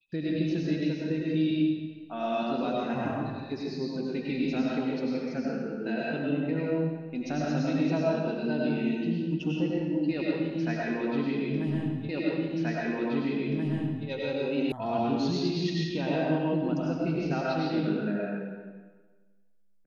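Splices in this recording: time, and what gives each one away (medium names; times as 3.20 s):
12.09 s: repeat of the last 1.98 s
14.72 s: sound stops dead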